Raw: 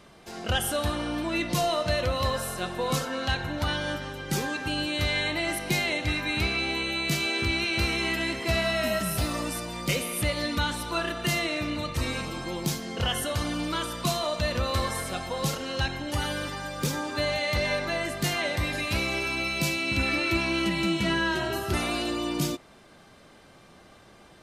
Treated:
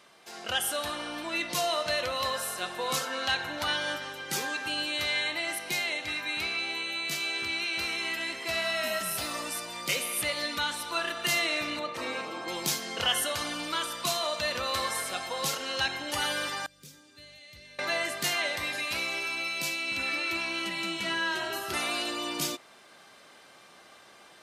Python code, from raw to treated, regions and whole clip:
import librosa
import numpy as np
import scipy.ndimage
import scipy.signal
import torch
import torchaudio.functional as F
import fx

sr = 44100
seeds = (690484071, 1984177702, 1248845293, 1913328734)

y = fx.chain(x, sr, fx.highpass(hz=390.0, slope=12),
    fx.tilt_eq(slope=-4.0), at=(11.79, 12.48))
y = fx.chain(y, sr, fx.tone_stack(knobs='10-0-1'),
    fx.notch(hz=750.0, q=8.8), at=(16.66, 17.79))
y = fx.highpass(y, sr, hz=940.0, slope=6)
y = fx.rider(y, sr, range_db=10, speed_s=2.0)